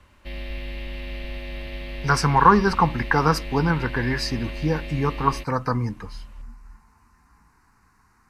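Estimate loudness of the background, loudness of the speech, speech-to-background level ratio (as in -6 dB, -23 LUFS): -35.0 LUFS, -22.0 LUFS, 13.0 dB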